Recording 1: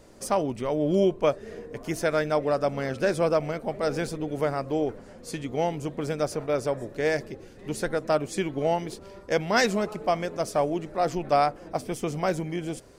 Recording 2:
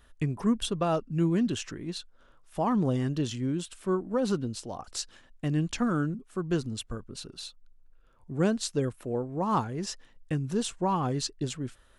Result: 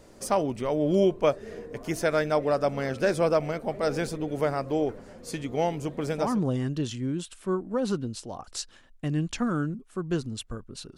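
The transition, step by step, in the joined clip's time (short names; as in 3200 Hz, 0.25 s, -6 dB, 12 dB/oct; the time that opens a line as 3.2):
recording 1
6.25 switch to recording 2 from 2.65 s, crossfade 0.36 s equal-power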